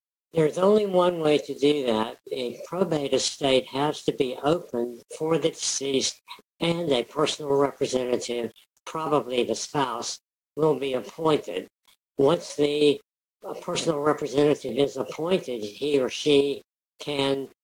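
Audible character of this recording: chopped level 3.2 Hz, depth 60%, duty 50%; a quantiser's noise floor 10-bit, dither none; Vorbis

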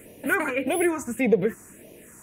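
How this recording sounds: phasing stages 4, 1.7 Hz, lowest notch 530–1400 Hz

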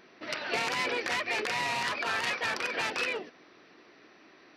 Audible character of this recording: noise floor -58 dBFS; spectral tilt -1.5 dB/oct

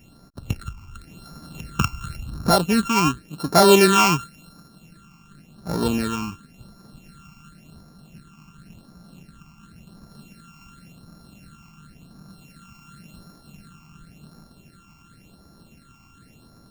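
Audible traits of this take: a buzz of ramps at a fixed pitch in blocks of 32 samples; phasing stages 8, 0.92 Hz, lowest notch 510–2800 Hz

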